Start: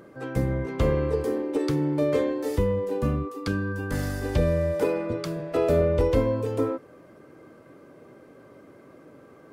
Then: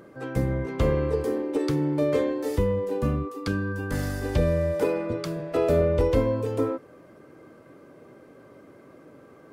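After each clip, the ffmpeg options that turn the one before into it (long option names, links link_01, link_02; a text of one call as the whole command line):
ffmpeg -i in.wav -af anull out.wav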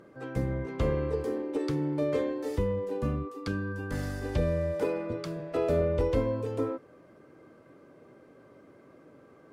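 ffmpeg -i in.wav -af "highshelf=frequency=12000:gain=-10.5,volume=-5dB" out.wav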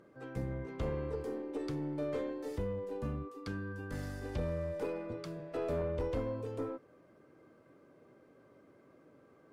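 ffmpeg -i in.wav -af "aeval=exprs='(tanh(11.2*val(0)+0.2)-tanh(0.2))/11.2':channel_layout=same,volume=-6.5dB" out.wav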